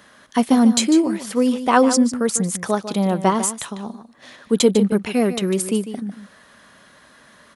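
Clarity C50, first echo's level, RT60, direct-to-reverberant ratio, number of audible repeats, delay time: no reverb, -11.5 dB, no reverb, no reverb, 1, 149 ms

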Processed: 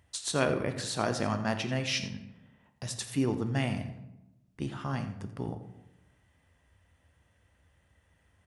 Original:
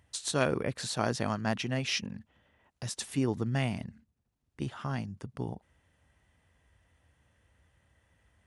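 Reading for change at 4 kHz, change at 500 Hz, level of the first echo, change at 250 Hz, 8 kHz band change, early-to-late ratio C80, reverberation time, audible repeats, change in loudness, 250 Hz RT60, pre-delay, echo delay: +0.5 dB, +1.0 dB, -14.0 dB, +1.0 dB, +0.5 dB, 11.0 dB, 0.95 s, 1, +0.5 dB, 1.2 s, 9 ms, 86 ms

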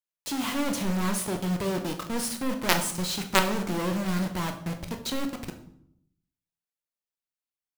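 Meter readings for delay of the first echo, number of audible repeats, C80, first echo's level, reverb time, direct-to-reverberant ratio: no echo, no echo, 13.0 dB, no echo, 0.70 s, 4.5 dB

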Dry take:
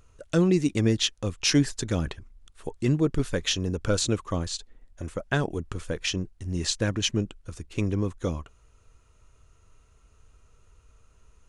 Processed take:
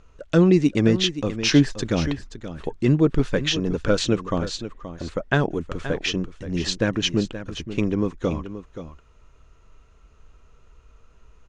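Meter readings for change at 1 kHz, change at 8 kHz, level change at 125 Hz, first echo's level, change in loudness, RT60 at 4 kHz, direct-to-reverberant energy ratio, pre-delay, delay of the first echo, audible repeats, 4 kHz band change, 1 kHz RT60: +5.5 dB, -2.0 dB, +3.5 dB, -12.0 dB, +4.5 dB, no reverb, no reverb, no reverb, 526 ms, 1, +3.0 dB, no reverb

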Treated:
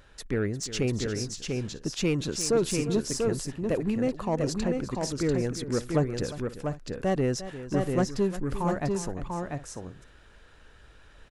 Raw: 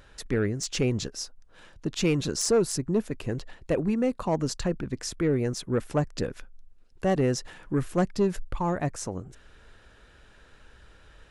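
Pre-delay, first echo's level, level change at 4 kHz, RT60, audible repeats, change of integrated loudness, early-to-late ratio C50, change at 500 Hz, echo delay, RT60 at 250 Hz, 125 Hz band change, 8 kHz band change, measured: no reverb, -13.5 dB, -0.5 dB, no reverb, 3, -1.0 dB, no reverb, -0.5 dB, 352 ms, no reverb, -0.5 dB, -0.5 dB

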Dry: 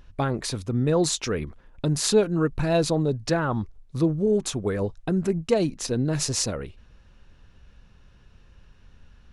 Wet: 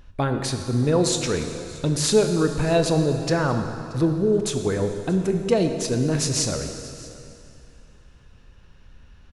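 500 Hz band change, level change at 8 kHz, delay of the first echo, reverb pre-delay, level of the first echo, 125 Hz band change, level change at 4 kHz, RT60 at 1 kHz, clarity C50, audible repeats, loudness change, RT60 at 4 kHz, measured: +2.5 dB, +2.5 dB, 629 ms, 6 ms, -21.5 dB, +2.5 dB, +2.5 dB, 2.5 s, 6.5 dB, 1, +2.5 dB, 2.4 s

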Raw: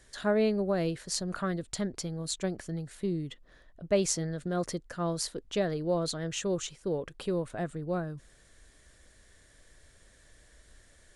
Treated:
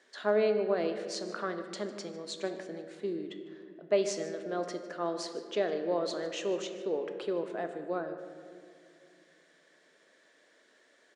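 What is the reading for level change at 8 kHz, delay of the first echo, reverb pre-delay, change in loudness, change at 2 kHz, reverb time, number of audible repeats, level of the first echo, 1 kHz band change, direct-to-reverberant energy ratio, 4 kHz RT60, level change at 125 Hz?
-9.5 dB, 152 ms, 5 ms, -1.5 dB, -0.5 dB, 2.4 s, 1, -17.5 dB, +0.5 dB, 6.5 dB, 1.3 s, -14.5 dB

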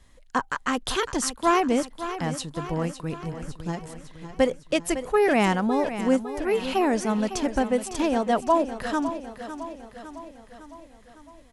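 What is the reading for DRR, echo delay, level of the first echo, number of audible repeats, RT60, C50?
no reverb, 556 ms, -11.5 dB, 5, no reverb, no reverb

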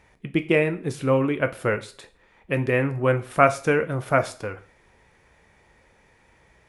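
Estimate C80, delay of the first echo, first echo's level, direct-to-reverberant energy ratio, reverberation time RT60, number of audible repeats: 21.0 dB, no echo, no echo, 9.0 dB, 0.40 s, no echo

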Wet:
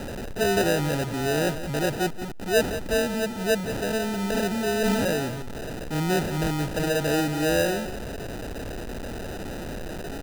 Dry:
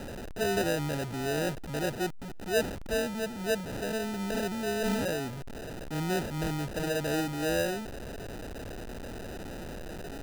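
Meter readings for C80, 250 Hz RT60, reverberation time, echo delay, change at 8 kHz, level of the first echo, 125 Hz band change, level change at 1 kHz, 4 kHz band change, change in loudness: no reverb, no reverb, no reverb, 181 ms, +6.5 dB, -12.0 dB, +6.5 dB, +6.5 dB, +6.5 dB, +6.5 dB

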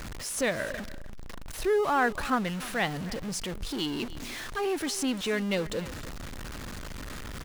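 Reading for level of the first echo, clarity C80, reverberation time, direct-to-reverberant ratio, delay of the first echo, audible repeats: -17.5 dB, no reverb, no reverb, no reverb, 299 ms, 1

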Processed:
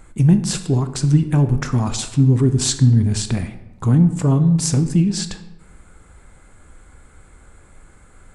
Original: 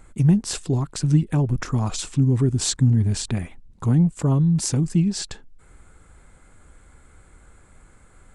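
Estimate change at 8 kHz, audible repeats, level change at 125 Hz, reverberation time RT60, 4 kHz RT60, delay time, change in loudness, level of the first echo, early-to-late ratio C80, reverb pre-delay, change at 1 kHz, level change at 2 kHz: +4.0 dB, no echo, +4.0 dB, 1.0 s, 0.60 s, no echo, +4.0 dB, no echo, 14.0 dB, 15 ms, +4.0 dB, +4.0 dB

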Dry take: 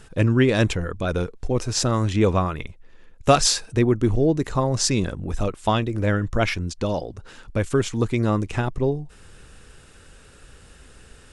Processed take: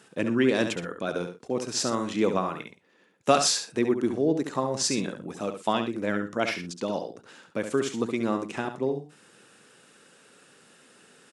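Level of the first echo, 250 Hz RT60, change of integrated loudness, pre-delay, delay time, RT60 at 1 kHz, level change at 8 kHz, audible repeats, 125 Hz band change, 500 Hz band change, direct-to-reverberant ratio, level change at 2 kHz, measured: -8.0 dB, no reverb, -5.0 dB, no reverb, 69 ms, no reverb, -4.0 dB, 2, -16.0 dB, -4.0 dB, no reverb, -4.0 dB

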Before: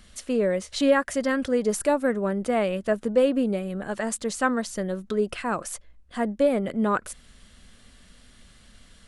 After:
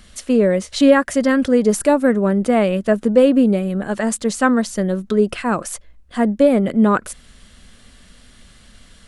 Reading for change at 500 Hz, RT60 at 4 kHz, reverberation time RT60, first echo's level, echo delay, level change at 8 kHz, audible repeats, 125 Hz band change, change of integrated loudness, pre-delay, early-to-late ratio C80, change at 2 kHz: +7.5 dB, no reverb, no reverb, no echo, no echo, +6.0 dB, no echo, +10.5 dB, +8.5 dB, no reverb, no reverb, +6.0 dB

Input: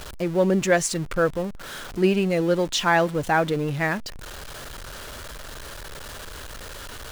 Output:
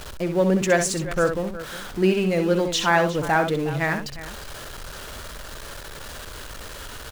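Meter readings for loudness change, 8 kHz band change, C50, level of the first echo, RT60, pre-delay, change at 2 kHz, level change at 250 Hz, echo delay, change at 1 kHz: +0.5 dB, +1.0 dB, no reverb, -7.5 dB, no reverb, no reverb, +1.0 dB, +0.5 dB, 64 ms, +1.0 dB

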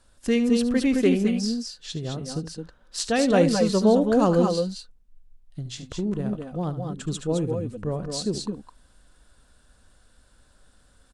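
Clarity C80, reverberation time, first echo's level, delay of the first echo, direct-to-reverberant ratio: no reverb, no reverb, -13.5 dB, 73 ms, no reverb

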